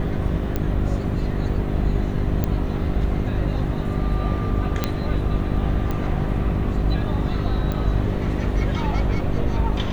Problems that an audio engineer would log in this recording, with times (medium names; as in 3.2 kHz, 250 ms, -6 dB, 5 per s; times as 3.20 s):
hum 50 Hz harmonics 8 -26 dBFS
0.56 s: pop -11 dBFS
2.44 s: pop -9 dBFS
4.84 s: pop -6 dBFS
5.91 s: pop -14 dBFS
7.72 s: pop -14 dBFS